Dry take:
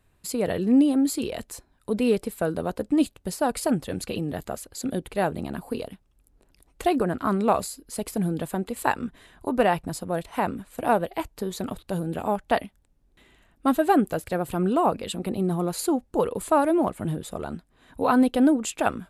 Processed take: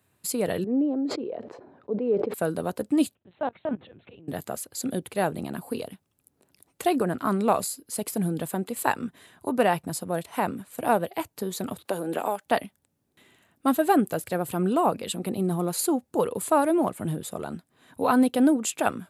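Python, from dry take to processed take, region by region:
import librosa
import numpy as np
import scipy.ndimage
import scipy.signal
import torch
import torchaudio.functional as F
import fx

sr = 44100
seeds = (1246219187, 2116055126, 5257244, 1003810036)

y = fx.chain(x, sr, fx.bandpass_q(hz=460.0, q=1.4),
    fx.air_absorb(metres=220.0),
    fx.sustainer(db_per_s=49.0), at=(0.64, 2.34))
y = fx.chain(y, sr, fx.level_steps(step_db=23),
    fx.air_absorb(metres=65.0),
    fx.lpc_vocoder(seeds[0], excitation='pitch_kept', order=10), at=(3.15, 4.28))
y = fx.chain(y, sr, fx.highpass(hz=380.0, slope=12),
    fx.band_squash(depth_pct=100), at=(11.85, 12.46))
y = scipy.signal.sosfilt(scipy.signal.butter(4, 97.0, 'highpass', fs=sr, output='sos'), y)
y = fx.high_shelf(y, sr, hz=8400.0, db=9.0)
y = F.gain(torch.from_numpy(y), -1.0).numpy()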